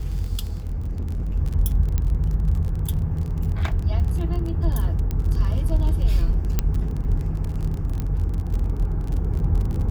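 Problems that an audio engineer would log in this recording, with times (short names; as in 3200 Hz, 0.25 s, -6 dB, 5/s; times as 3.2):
crackle 30/s -28 dBFS
0.64–1.36 clipped -23 dBFS
1.98 pop -12 dBFS
5.11 pop -15 dBFS
6.59 pop -7 dBFS
8 pop -15 dBFS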